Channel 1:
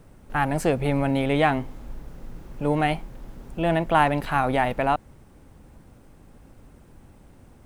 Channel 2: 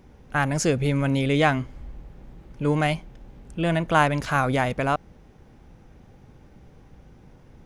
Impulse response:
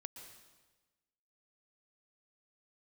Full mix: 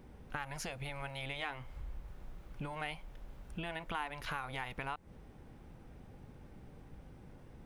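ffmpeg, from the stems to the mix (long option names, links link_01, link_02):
-filter_complex "[0:a]volume=-13dB[link_01];[1:a]equalizer=frequency=7400:width_type=o:width=0.74:gain=-9,acompressor=threshold=-27dB:ratio=6,volume=-1,volume=-4.5dB[link_02];[link_01][link_02]amix=inputs=2:normalize=0,acompressor=threshold=-39dB:ratio=2"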